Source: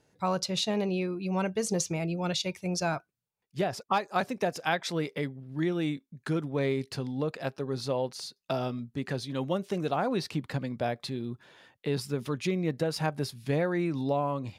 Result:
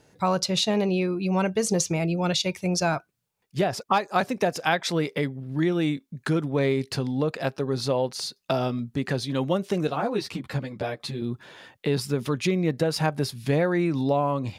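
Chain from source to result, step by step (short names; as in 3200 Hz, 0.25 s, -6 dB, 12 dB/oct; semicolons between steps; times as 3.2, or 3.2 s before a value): in parallel at +0.5 dB: compressor, threshold -37 dBFS, peak gain reduction 14 dB; 9.87–11.22 on the sum: ensemble effect; gain +3 dB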